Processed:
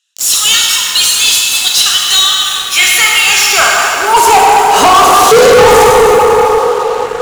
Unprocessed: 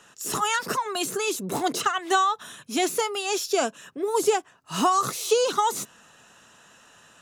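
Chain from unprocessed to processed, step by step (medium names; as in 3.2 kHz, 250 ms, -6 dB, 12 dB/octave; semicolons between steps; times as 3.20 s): high-pass sweep 3.6 kHz -> 450 Hz, 2.17–5.04 s; in parallel at -9.5 dB: bit crusher 6-bit; on the sum: plate-style reverb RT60 4.4 s, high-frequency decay 0.5×, DRR -3 dB; waveshaping leveller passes 5; trim -2 dB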